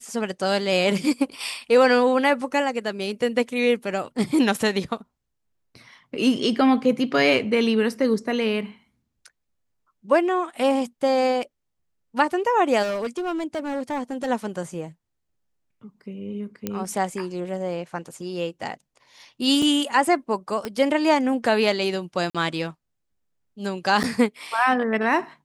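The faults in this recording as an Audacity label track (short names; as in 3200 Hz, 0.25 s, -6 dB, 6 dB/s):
12.820000	14.280000	clipped -23 dBFS
16.670000	16.670000	pop -12 dBFS
19.620000	19.620000	gap 4.2 ms
20.650000	20.650000	pop -14 dBFS
22.300000	22.350000	gap 46 ms
24.030000	24.040000	gap 8.5 ms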